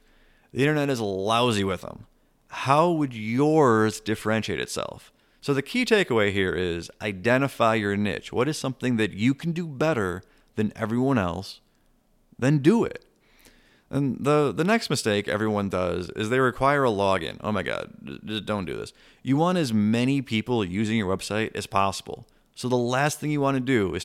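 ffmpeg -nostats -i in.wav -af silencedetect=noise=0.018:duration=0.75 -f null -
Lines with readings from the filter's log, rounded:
silence_start: 11.53
silence_end: 12.39 | silence_duration: 0.87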